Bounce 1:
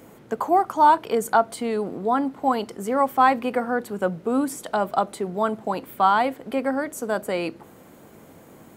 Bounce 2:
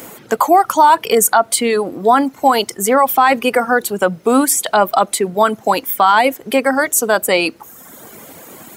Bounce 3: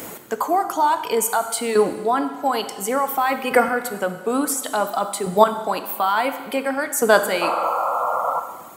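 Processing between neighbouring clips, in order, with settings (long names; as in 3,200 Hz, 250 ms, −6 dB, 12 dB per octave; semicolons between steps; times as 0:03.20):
reverb reduction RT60 1 s; spectral tilt +2.5 dB per octave; boost into a limiter +15 dB; level −1 dB
sound drawn into the spectrogram noise, 0:07.41–0:08.40, 480–1,400 Hz −13 dBFS; square-wave tremolo 0.57 Hz, depth 65%, duty 10%; dense smooth reverb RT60 1.4 s, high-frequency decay 1×, DRR 8 dB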